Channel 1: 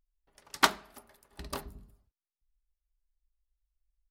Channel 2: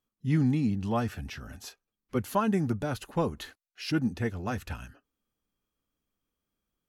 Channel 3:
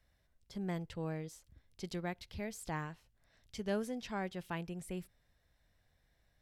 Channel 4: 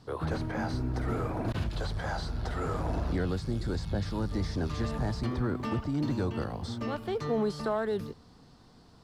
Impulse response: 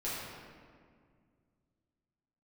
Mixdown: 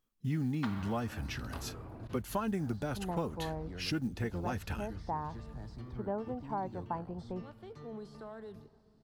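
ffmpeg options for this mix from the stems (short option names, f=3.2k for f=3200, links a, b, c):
-filter_complex "[0:a]acrossover=split=4000[a][b];[b]acompressor=threshold=-50dB:ratio=4:attack=1:release=60[c];[a][c]amix=inputs=2:normalize=0,volume=-8dB,asplit=2[d][e];[e]volume=-9.5dB[f];[1:a]acrusher=bits=9:mode=log:mix=0:aa=0.000001,volume=0.5dB,asplit=2[g][h];[2:a]lowpass=f=910:t=q:w=4.3,adelay=2400,volume=0.5dB[i];[3:a]lowshelf=f=180:g=6.5,adelay=550,volume=-18.5dB,asplit=2[j][k];[k]volume=-18.5dB[l];[h]apad=whole_len=181037[m];[d][m]sidechaincompress=threshold=-28dB:ratio=8:attack=16:release=390[n];[4:a]atrim=start_sample=2205[o];[f][l]amix=inputs=2:normalize=0[p];[p][o]afir=irnorm=-1:irlink=0[q];[n][g][i][j][q]amix=inputs=5:normalize=0,acompressor=threshold=-33dB:ratio=3"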